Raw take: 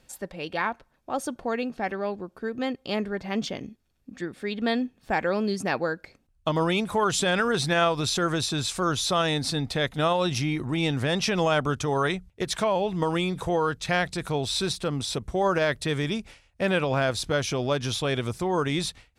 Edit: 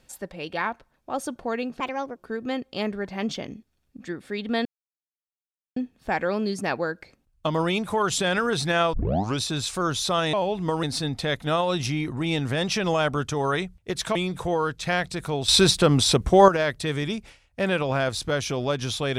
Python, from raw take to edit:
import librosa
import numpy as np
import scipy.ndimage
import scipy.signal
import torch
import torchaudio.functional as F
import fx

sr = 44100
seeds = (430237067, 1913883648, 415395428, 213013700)

y = fx.edit(x, sr, fx.speed_span(start_s=1.8, length_s=0.49, speed=1.35),
    fx.insert_silence(at_s=4.78, length_s=1.11),
    fx.tape_start(start_s=7.95, length_s=0.47),
    fx.move(start_s=12.67, length_s=0.5, to_s=9.35),
    fx.clip_gain(start_s=14.5, length_s=1.0, db=10.0), tone=tone)